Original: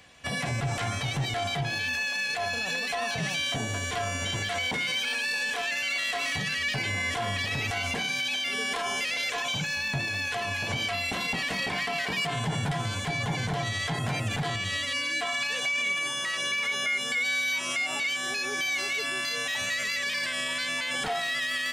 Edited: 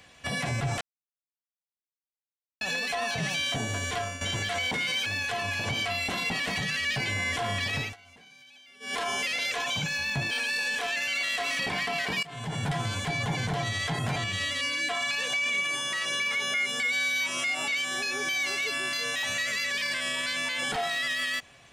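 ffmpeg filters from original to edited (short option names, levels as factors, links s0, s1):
-filter_complex "[0:a]asplit=12[s0][s1][s2][s3][s4][s5][s6][s7][s8][s9][s10][s11];[s0]atrim=end=0.81,asetpts=PTS-STARTPTS,afade=t=out:st=0.806:d=0.004:c=hsin[s12];[s1]atrim=start=0.81:end=2.61,asetpts=PTS-STARTPTS,volume=0[s13];[s2]atrim=start=2.61:end=4.21,asetpts=PTS-STARTPTS,afade=t=in:d=0.004:c=hsin,afade=t=out:st=1.35:d=0.25:silence=0.316228[s14];[s3]atrim=start=4.21:end=5.062,asetpts=PTS-STARTPTS,afade=t=in:d=0.004:c=hsin:silence=0.316228[s15];[s4]atrim=start=10.088:end=11.592[s16];[s5]atrim=start=6.338:end=7.74,asetpts=PTS-STARTPTS,afade=t=out:st=1.232:d=0.17:silence=0.0630957[s17];[s6]atrim=start=7.74:end=8.58,asetpts=PTS-STARTPTS,volume=0.0631[s18];[s7]atrim=start=8.58:end=10.092,asetpts=PTS-STARTPTS,afade=t=in:d=0.17:silence=0.0630957[s19];[s8]atrim=start=5.058:end=6.342[s20];[s9]atrim=start=11.588:end=12.23,asetpts=PTS-STARTPTS,afade=t=out:st=0.638:d=0.004:c=hsin:silence=0.112202[s21];[s10]atrim=start=12.23:end=14.162,asetpts=PTS-STARTPTS,afade=t=in:d=0.48:silence=0.112202[s22];[s11]atrim=start=14.478[s23];[s12][s13][s14][s15]concat=n=4:v=0:a=1[s24];[s24][s16]acrossfade=d=0.004:c1=hsin:c2=hsin[s25];[s17][s18][s19]concat=n=3:v=0:a=1[s26];[s25][s26]acrossfade=d=0.004:c1=hsin:c2=hsin[s27];[s27][s20]acrossfade=d=0.004:c1=hsin:c2=hsin[s28];[s21][s22]concat=n=2:v=0:a=1[s29];[s28][s29]acrossfade=d=0.004:c1=hsin:c2=hsin[s30];[s30][s23]acrossfade=d=0.004:c1=hsin:c2=hsin"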